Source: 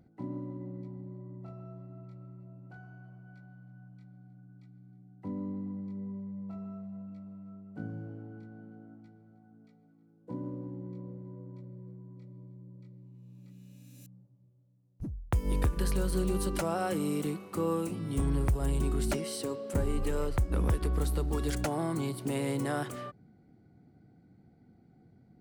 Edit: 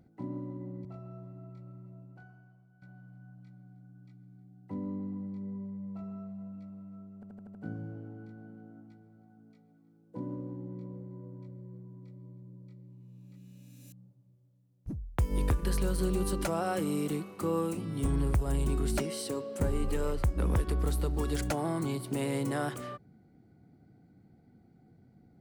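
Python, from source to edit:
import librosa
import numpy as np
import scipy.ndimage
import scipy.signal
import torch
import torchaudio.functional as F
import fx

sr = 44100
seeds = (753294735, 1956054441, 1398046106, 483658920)

y = fx.edit(x, sr, fx.cut(start_s=0.85, length_s=0.54),
    fx.fade_out_to(start_s=2.54, length_s=0.82, curve='qua', floor_db=-12.0),
    fx.stutter(start_s=7.69, slice_s=0.08, count=6), tone=tone)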